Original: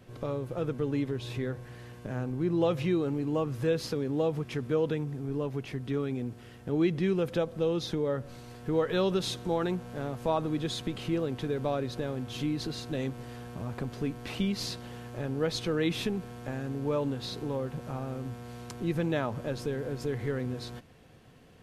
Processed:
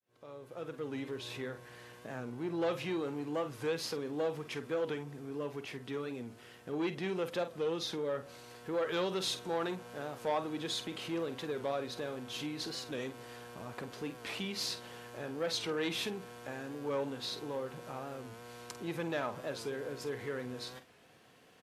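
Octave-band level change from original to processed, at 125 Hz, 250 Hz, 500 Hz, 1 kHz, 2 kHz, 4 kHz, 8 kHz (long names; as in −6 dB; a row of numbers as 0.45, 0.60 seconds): −13.5, −8.5, −5.5, −3.0, −1.5, −0.5, 0.0 decibels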